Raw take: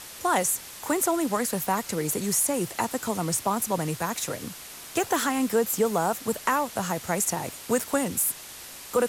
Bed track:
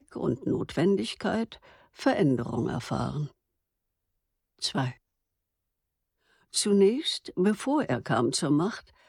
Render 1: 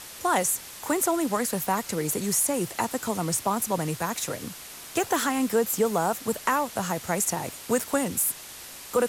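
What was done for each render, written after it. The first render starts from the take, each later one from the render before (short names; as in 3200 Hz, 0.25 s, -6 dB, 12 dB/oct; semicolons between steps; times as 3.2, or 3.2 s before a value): nothing audible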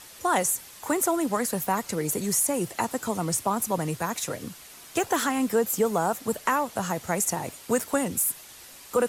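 denoiser 6 dB, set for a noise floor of -43 dBFS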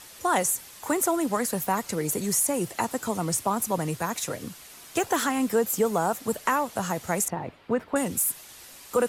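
7.28–7.96 air absorption 400 m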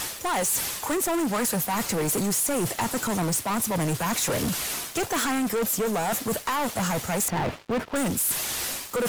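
reverse; compressor 8:1, threshold -33 dBFS, peak gain reduction 15 dB; reverse; sample leveller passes 5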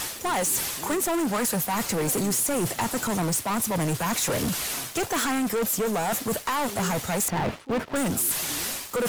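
add bed track -17 dB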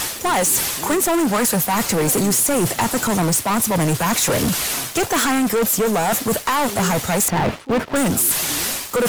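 gain +7.5 dB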